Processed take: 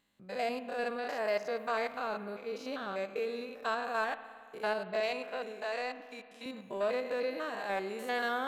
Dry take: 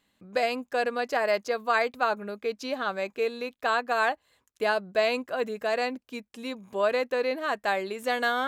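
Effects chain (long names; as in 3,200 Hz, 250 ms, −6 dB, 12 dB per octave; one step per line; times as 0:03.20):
spectrum averaged block by block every 100 ms
0:05.00–0:06.46: meter weighting curve A
in parallel at −8 dB: soft clipping −30 dBFS, distortion −9 dB
on the sum: spring reverb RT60 2.2 s, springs 55 ms, chirp 75 ms, DRR 12 dB
level −6.5 dB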